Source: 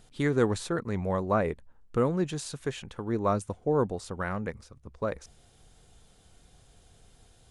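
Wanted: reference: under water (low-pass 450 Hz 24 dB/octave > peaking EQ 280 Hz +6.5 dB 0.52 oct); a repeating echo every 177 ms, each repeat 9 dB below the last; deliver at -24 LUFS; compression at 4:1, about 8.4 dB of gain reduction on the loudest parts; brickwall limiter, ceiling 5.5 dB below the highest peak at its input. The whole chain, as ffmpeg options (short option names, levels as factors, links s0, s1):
-af "acompressor=threshold=0.0316:ratio=4,alimiter=level_in=1.33:limit=0.0631:level=0:latency=1,volume=0.75,lowpass=f=450:w=0.5412,lowpass=f=450:w=1.3066,equalizer=f=280:t=o:w=0.52:g=6.5,aecho=1:1:177|354|531|708:0.355|0.124|0.0435|0.0152,volume=4.73"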